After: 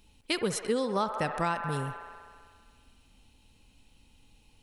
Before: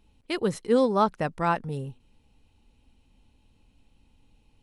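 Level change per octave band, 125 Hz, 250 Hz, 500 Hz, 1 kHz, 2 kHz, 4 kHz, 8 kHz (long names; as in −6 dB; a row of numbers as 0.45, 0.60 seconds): −3.0 dB, −6.0 dB, −6.0 dB, −4.5 dB, 0.0 dB, +3.0 dB, can't be measured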